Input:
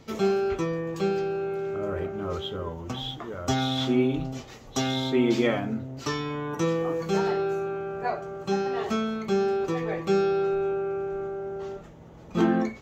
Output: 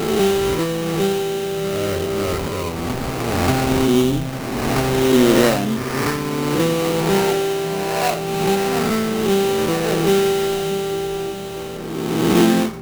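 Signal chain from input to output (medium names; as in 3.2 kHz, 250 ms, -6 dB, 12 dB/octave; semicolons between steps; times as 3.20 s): reverse spectral sustain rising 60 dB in 1.84 s; sample-rate reducer 3.4 kHz, jitter 20%; repeats whose band climbs or falls 626 ms, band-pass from 160 Hz, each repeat 0.7 oct, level -9.5 dB; trim +6 dB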